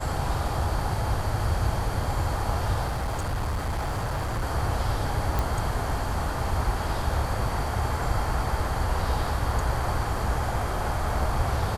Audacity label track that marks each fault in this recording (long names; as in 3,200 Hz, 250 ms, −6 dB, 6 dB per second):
2.870000	4.430000	clipping −24.5 dBFS
5.390000	5.390000	click